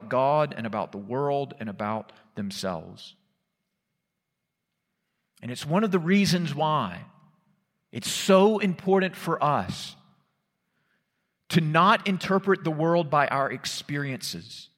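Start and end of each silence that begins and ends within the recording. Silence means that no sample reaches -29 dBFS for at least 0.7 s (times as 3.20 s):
2.79–5.43 s
6.97–7.95 s
9.88–11.50 s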